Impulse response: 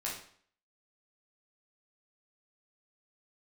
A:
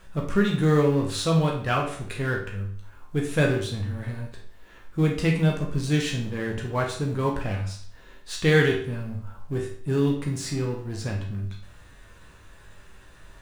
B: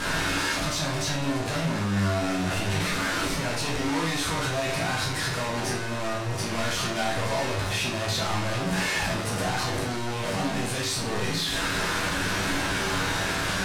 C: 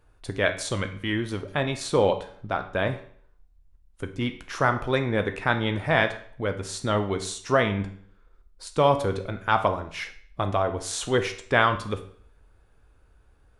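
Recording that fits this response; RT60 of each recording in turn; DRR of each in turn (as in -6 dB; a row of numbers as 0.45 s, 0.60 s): B; 0.55 s, 0.55 s, 0.55 s; -1.0 dB, -5.0 dB, 7.0 dB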